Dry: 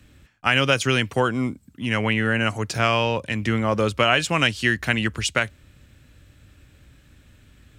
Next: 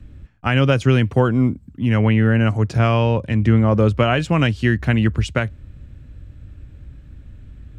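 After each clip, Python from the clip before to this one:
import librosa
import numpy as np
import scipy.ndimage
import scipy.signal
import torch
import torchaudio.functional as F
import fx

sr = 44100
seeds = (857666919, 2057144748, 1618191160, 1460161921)

y = fx.tilt_eq(x, sr, slope=-3.5)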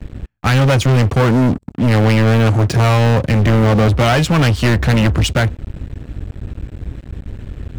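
y = fx.leveller(x, sr, passes=5)
y = F.gain(torch.from_numpy(y), -5.5).numpy()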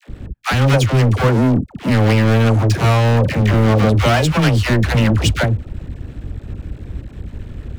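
y = fx.dispersion(x, sr, late='lows', ms=80.0, hz=610.0)
y = F.gain(torch.from_numpy(y), -1.0).numpy()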